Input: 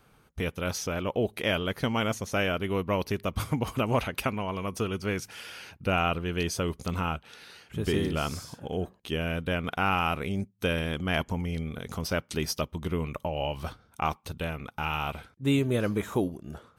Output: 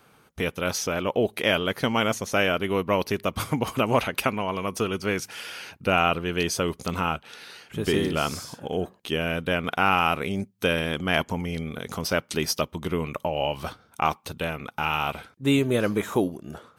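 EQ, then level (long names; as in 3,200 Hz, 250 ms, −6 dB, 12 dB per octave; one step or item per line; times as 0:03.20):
high-pass filter 200 Hz 6 dB per octave
+5.5 dB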